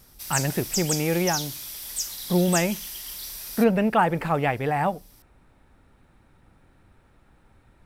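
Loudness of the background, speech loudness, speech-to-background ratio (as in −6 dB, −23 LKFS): −30.0 LKFS, −24.5 LKFS, 5.5 dB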